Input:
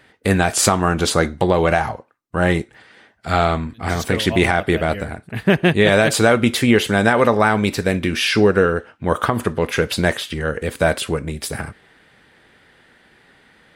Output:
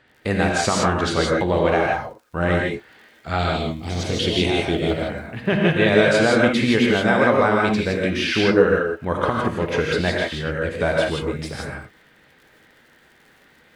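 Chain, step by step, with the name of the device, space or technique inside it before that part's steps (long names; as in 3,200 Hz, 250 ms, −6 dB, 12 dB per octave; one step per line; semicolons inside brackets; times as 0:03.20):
lo-fi chain (low-pass filter 5,500 Hz 12 dB per octave; tape wow and flutter; surface crackle 51 per second −38 dBFS)
0:03.39–0:04.91: drawn EQ curve 430 Hz 0 dB, 1,600 Hz −13 dB, 3,100 Hz +5 dB
reverb whose tail is shaped and stops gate 190 ms rising, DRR −1.5 dB
level −5.5 dB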